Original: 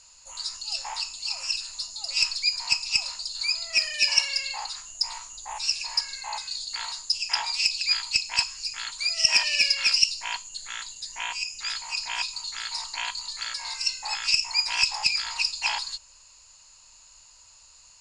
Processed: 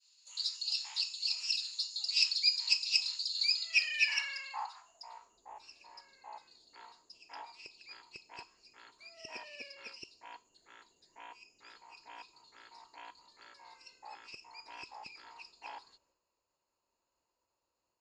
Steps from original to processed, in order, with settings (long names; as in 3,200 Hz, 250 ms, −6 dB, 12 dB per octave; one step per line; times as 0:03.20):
downward expander −47 dBFS
band-pass filter sweep 3,900 Hz → 380 Hz, 0:03.54–0:05.42